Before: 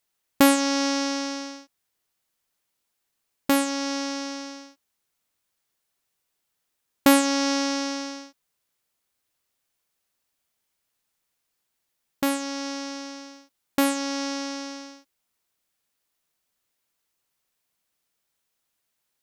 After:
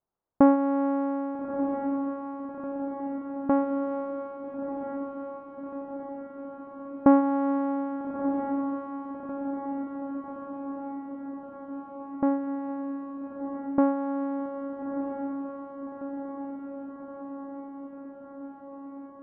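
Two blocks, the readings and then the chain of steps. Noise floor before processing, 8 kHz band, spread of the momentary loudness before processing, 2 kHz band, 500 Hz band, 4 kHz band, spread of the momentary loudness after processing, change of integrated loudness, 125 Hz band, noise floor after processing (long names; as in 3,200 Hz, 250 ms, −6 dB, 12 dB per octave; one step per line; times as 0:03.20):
−79 dBFS, below −40 dB, 18 LU, −15.5 dB, +1.5 dB, below −35 dB, 16 LU, −5.5 dB, can't be measured, −45 dBFS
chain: low-pass filter 1,100 Hz 24 dB per octave
on a send: feedback delay with all-pass diffusion 1,284 ms, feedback 70%, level −7 dB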